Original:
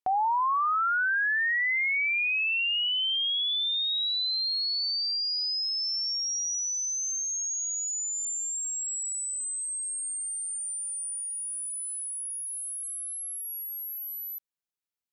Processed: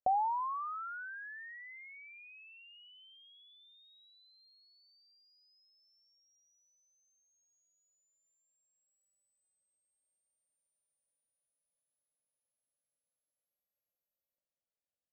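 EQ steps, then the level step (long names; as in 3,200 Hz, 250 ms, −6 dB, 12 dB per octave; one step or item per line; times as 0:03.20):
low-pass with resonance 550 Hz, resonance Q 5.6
parametric band 400 Hz −13.5 dB 0.59 octaves
−1.5 dB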